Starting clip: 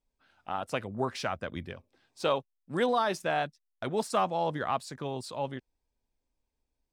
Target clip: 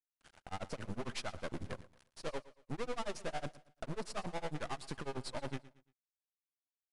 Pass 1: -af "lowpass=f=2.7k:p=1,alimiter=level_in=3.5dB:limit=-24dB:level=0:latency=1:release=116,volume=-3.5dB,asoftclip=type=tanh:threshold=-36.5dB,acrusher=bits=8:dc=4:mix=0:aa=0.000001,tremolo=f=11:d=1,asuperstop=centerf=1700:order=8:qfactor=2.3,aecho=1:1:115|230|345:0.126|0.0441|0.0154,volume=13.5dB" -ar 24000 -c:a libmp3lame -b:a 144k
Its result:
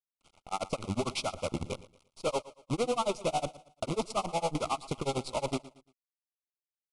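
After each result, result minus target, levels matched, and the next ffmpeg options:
2000 Hz band -6.0 dB; soft clip: distortion -4 dB
-af "lowpass=f=2.7k:p=1,alimiter=level_in=3.5dB:limit=-24dB:level=0:latency=1:release=116,volume=-3.5dB,asoftclip=type=tanh:threshold=-36.5dB,acrusher=bits=8:dc=4:mix=0:aa=0.000001,tremolo=f=11:d=1,aecho=1:1:115|230|345:0.126|0.0441|0.0154,volume=13.5dB" -ar 24000 -c:a libmp3lame -b:a 144k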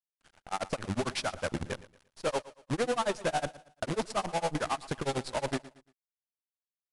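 soft clip: distortion -4 dB
-af "lowpass=f=2.7k:p=1,alimiter=level_in=3.5dB:limit=-24dB:level=0:latency=1:release=116,volume=-3.5dB,asoftclip=type=tanh:threshold=-42.5dB,acrusher=bits=8:dc=4:mix=0:aa=0.000001,tremolo=f=11:d=1,aecho=1:1:115|230|345:0.126|0.0441|0.0154,volume=13.5dB" -ar 24000 -c:a libmp3lame -b:a 144k

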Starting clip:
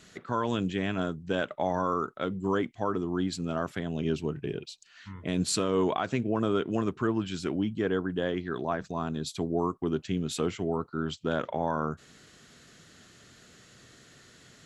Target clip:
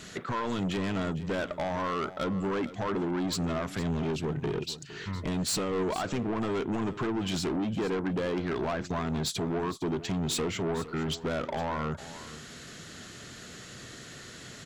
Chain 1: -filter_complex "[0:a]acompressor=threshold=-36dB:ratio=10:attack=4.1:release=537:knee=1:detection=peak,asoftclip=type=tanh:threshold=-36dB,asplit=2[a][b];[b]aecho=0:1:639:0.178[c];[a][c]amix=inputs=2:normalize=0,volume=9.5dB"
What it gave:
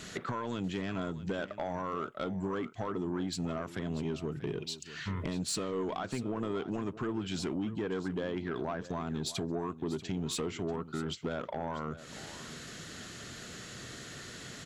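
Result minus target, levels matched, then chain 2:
compressor: peak gain reduction +9 dB; echo 0.18 s late
-filter_complex "[0:a]acompressor=threshold=-26dB:ratio=10:attack=4.1:release=537:knee=1:detection=peak,asoftclip=type=tanh:threshold=-36dB,asplit=2[a][b];[b]aecho=0:1:459:0.178[c];[a][c]amix=inputs=2:normalize=0,volume=9.5dB"

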